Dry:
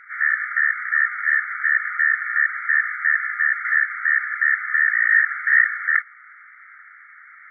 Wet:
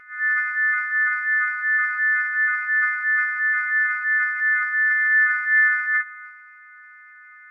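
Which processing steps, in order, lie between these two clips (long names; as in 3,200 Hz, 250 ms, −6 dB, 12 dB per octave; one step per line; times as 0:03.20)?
every partial snapped to a pitch grid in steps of 3 semitones
tilt shelving filter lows +6.5 dB, about 1,300 Hz
transient designer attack −4 dB, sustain +8 dB
level −4.5 dB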